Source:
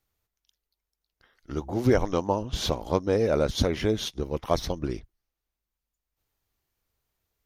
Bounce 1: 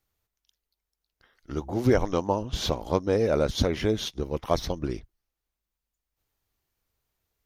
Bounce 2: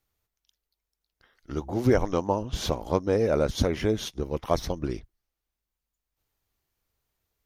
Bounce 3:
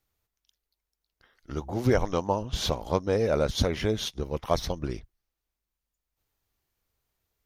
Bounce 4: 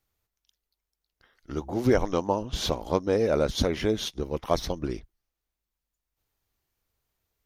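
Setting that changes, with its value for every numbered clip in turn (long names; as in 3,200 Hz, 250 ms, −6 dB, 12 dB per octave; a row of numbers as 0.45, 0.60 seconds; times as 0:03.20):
dynamic equaliser, frequency: 9,700, 3,800, 310, 100 Hertz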